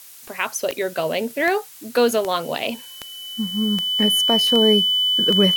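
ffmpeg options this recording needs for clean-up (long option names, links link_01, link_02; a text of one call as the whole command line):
ffmpeg -i in.wav -af "adeclick=threshold=4,bandreject=frequency=3000:width=30,afftdn=noise_reduction=24:noise_floor=-40" out.wav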